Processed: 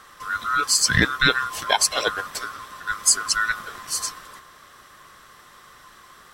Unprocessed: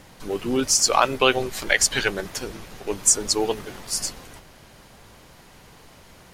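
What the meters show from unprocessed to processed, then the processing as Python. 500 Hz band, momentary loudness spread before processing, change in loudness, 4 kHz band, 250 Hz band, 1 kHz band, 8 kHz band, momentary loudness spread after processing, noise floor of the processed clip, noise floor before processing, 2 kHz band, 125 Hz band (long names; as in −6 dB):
−8.0 dB, 14 LU, +0.5 dB, +1.5 dB, −4.0 dB, +1.0 dB, −0.5 dB, 13 LU, −50 dBFS, −50 dBFS, +4.0 dB, +4.0 dB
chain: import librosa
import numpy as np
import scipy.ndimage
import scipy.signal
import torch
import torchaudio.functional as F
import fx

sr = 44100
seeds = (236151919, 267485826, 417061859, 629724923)

y = fx.band_swap(x, sr, width_hz=1000)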